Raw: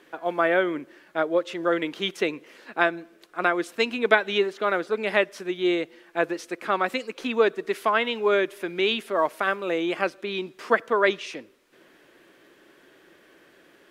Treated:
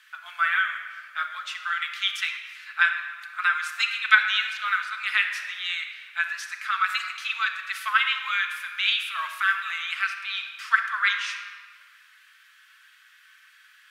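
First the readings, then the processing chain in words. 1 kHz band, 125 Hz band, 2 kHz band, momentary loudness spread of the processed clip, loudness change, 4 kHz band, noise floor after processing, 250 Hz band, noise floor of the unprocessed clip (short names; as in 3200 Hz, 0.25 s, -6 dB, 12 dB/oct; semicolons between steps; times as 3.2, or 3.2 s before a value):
-1.5 dB, under -40 dB, +5.0 dB, 10 LU, 0.0 dB, +4.5 dB, -56 dBFS, under -40 dB, -57 dBFS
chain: elliptic high-pass 1300 Hz, stop band 70 dB; shoebox room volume 2800 m³, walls mixed, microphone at 1.5 m; gain +3 dB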